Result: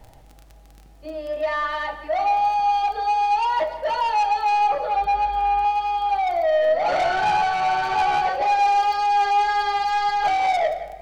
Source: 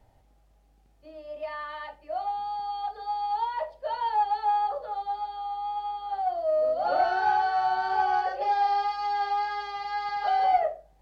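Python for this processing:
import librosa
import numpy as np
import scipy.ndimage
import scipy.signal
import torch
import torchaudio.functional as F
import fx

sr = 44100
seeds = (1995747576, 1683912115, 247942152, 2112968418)

p1 = fx.tilt_eq(x, sr, slope=-3.0, at=(4.96, 5.65))
p2 = fx.rider(p1, sr, range_db=4, speed_s=0.5)
p3 = p1 + (p2 * librosa.db_to_amplitude(0.0))
p4 = fx.dmg_crackle(p3, sr, seeds[0], per_s=18.0, level_db=-36.0)
p5 = 10.0 ** (-22.5 / 20.0) * np.tanh(p4 / 10.0 ** (-22.5 / 20.0))
p6 = p5 + fx.echo_single(p5, sr, ms=174, db=-16.0, dry=0)
p7 = fx.room_shoebox(p6, sr, seeds[1], volume_m3=3100.0, walls='mixed', distance_m=0.66)
y = p7 * librosa.db_to_amplitude(4.5)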